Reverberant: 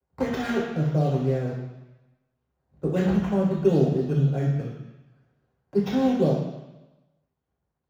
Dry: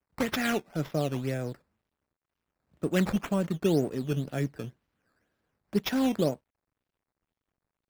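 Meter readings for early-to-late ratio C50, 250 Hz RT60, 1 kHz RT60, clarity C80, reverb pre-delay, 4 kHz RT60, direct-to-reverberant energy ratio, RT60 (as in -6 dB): 3.0 dB, 0.95 s, 1.1 s, 5.5 dB, 3 ms, 1.1 s, -5.0 dB, 1.0 s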